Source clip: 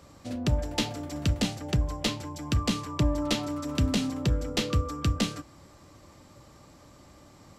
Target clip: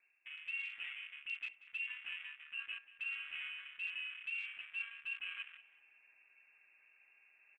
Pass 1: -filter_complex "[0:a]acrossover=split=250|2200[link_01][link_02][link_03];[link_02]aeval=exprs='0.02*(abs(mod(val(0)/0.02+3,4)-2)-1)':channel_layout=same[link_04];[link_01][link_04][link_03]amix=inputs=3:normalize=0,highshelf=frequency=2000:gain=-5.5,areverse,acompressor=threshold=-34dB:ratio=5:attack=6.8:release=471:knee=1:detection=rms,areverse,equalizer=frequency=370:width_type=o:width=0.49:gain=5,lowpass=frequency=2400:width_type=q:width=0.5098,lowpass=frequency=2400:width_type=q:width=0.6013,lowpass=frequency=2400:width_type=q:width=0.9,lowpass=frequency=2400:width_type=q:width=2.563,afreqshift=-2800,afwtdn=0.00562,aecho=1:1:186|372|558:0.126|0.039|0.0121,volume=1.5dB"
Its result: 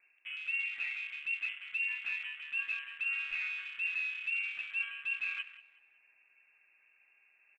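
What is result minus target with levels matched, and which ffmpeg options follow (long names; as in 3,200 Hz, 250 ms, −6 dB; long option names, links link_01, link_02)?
downward compressor: peak gain reduction −6.5 dB
-filter_complex "[0:a]acrossover=split=250|2200[link_01][link_02][link_03];[link_02]aeval=exprs='0.02*(abs(mod(val(0)/0.02+3,4)-2)-1)':channel_layout=same[link_04];[link_01][link_04][link_03]amix=inputs=3:normalize=0,highshelf=frequency=2000:gain=-5.5,areverse,acompressor=threshold=-42dB:ratio=5:attack=6.8:release=471:knee=1:detection=rms,areverse,equalizer=frequency=370:width_type=o:width=0.49:gain=5,lowpass=frequency=2400:width_type=q:width=0.5098,lowpass=frequency=2400:width_type=q:width=0.6013,lowpass=frequency=2400:width_type=q:width=0.9,lowpass=frequency=2400:width_type=q:width=2.563,afreqshift=-2800,afwtdn=0.00562,aecho=1:1:186|372|558:0.126|0.039|0.0121,volume=1.5dB"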